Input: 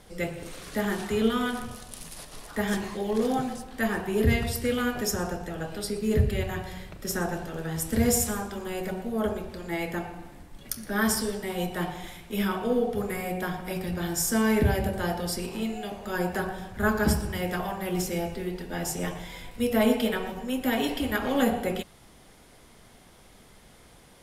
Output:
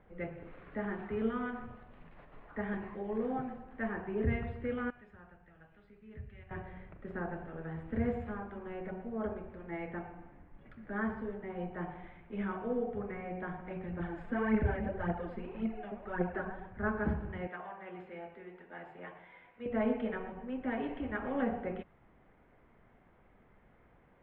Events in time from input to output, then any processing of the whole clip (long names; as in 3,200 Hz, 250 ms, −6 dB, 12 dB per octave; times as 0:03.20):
0:04.90–0:06.51: guitar amp tone stack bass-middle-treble 5-5-5
0:10.98–0:11.90: high-shelf EQ 4,100 Hz −9.5 dB
0:13.99–0:16.66: phase shifter 1.8 Hz, delay 4.9 ms, feedback 58%
0:17.47–0:19.66: high-pass filter 800 Hz 6 dB per octave
whole clip: inverse Chebyshev low-pass filter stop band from 5,400 Hz, stop band 50 dB; level −9 dB